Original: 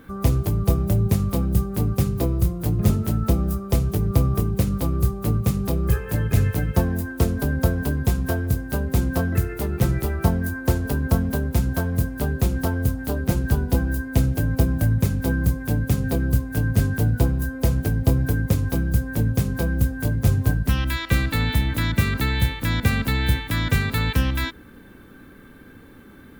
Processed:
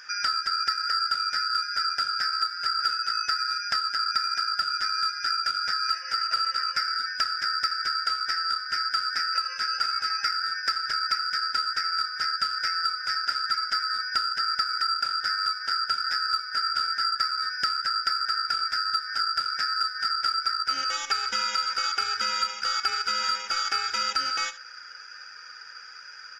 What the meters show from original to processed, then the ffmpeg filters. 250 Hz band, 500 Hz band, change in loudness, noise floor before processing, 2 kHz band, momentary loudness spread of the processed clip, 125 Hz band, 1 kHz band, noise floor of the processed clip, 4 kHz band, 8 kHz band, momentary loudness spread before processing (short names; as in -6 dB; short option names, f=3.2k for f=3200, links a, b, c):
under -30 dB, under -20 dB, -2.5 dB, -45 dBFS, +1.5 dB, 2 LU, under -40 dB, +8.5 dB, -44 dBFS, +12.0 dB, -2.5 dB, 3 LU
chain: -filter_complex "[0:a]afftfilt=real='real(if(lt(b,272),68*(eq(floor(b/68),0)*1+eq(floor(b/68),1)*3+eq(floor(b/68),2)*0+eq(floor(b/68),3)*2)+mod(b,68),b),0)':imag='imag(if(lt(b,272),68*(eq(floor(b/68),0)*1+eq(floor(b/68),1)*3+eq(floor(b/68),2)*0+eq(floor(b/68),3)*2)+mod(b,68),b),0)':win_size=2048:overlap=0.75,flanger=delay=1.6:depth=1.9:regen=-43:speed=1.1:shape=triangular,aeval=exprs='0.447*(cos(1*acos(clip(val(0)/0.447,-1,1)))-cos(1*PI/2))+0.02*(cos(3*acos(clip(val(0)/0.447,-1,1)))-cos(3*PI/2))+0.00501*(cos(8*acos(clip(val(0)/0.447,-1,1)))-cos(8*PI/2))':c=same,lowpass=f=6.5k:w=0.5412,lowpass=f=6.5k:w=1.3066,asplit=2[a][b];[b]asoftclip=type=tanh:threshold=-22dB,volume=-7dB[c];[a][c]amix=inputs=2:normalize=0,aecho=1:1:72:0.126,acompressor=threshold=-30dB:ratio=3,aeval=exprs='val(0)*sin(2*PI*1700*n/s)':c=same,volume=6.5dB"